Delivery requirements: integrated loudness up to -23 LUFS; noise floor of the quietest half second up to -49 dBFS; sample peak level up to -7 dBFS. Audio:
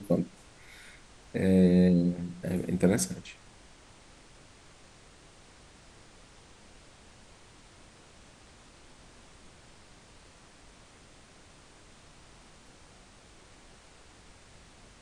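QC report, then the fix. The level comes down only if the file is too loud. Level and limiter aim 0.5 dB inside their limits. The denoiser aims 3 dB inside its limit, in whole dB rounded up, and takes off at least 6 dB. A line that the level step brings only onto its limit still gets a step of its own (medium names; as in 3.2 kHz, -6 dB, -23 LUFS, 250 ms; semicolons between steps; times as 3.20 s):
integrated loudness -27.0 LUFS: pass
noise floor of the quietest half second -55 dBFS: pass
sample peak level -9.5 dBFS: pass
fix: none needed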